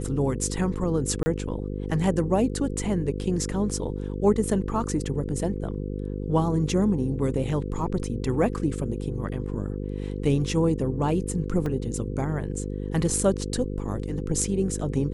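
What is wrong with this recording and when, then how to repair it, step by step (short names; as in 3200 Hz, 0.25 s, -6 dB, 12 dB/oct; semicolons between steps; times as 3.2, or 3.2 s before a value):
buzz 50 Hz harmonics 10 -31 dBFS
1.23–1.26 gap 30 ms
11.66 gap 2.8 ms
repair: de-hum 50 Hz, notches 10; interpolate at 1.23, 30 ms; interpolate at 11.66, 2.8 ms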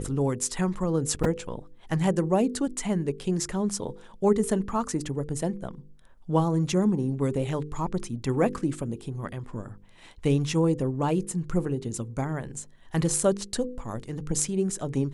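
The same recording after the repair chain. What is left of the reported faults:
none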